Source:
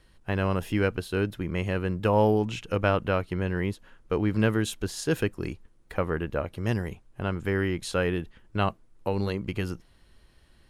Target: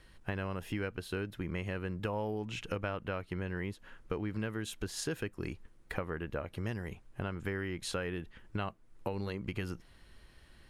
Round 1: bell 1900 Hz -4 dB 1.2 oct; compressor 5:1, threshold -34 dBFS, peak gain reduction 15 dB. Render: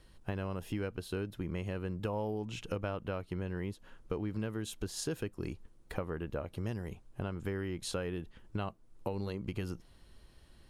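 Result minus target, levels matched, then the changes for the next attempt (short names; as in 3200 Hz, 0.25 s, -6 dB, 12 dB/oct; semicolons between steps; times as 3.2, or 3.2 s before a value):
2000 Hz band -5.0 dB
change: bell 1900 Hz +3.5 dB 1.2 oct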